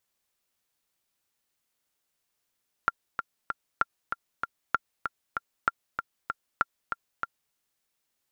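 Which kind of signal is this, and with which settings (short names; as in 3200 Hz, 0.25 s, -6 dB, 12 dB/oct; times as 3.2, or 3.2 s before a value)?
metronome 193 bpm, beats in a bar 3, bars 5, 1380 Hz, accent 7 dB -9 dBFS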